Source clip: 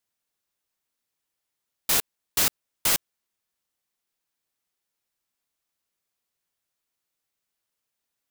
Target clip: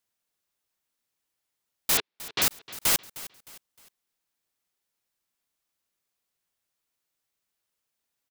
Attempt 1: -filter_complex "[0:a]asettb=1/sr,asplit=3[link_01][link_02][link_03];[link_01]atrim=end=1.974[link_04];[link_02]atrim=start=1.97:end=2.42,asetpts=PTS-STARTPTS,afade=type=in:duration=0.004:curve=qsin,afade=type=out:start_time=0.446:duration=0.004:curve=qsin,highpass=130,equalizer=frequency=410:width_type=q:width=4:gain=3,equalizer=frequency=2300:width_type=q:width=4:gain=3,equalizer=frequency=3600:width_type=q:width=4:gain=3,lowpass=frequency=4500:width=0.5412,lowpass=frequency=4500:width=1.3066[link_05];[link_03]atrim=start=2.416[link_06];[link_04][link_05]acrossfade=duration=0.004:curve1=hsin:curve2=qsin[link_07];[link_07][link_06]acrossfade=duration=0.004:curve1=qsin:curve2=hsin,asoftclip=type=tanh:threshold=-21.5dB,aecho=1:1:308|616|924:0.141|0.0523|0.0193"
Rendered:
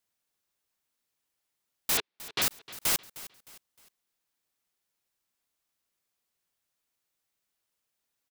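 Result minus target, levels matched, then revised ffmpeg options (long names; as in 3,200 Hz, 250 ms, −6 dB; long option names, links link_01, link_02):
soft clipping: distortion +15 dB
-filter_complex "[0:a]asettb=1/sr,asplit=3[link_01][link_02][link_03];[link_01]atrim=end=1.974[link_04];[link_02]atrim=start=1.97:end=2.42,asetpts=PTS-STARTPTS,afade=type=in:duration=0.004:curve=qsin,afade=type=out:start_time=0.446:duration=0.004:curve=qsin,highpass=130,equalizer=frequency=410:width_type=q:width=4:gain=3,equalizer=frequency=2300:width_type=q:width=4:gain=3,equalizer=frequency=3600:width_type=q:width=4:gain=3,lowpass=frequency=4500:width=0.5412,lowpass=frequency=4500:width=1.3066[link_05];[link_03]atrim=start=2.416[link_06];[link_04][link_05]acrossfade=duration=0.004:curve1=hsin:curve2=qsin[link_07];[link_07][link_06]acrossfade=duration=0.004:curve1=qsin:curve2=hsin,asoftclip=type=tanh:threshold=-9.5dB,aecho=1:1:308|616|924:0.141|0.0523|0.0193"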